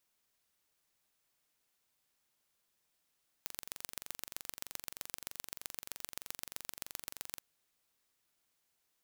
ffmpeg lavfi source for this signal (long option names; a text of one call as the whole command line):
ffmpeg -f lavfi -i "aevalsrc='0.266*eq(mod(n,1901),0)*(0.5+0.5*eq(mod(n,5703),0))':duration=3.94:sample_rate=44100" out.wav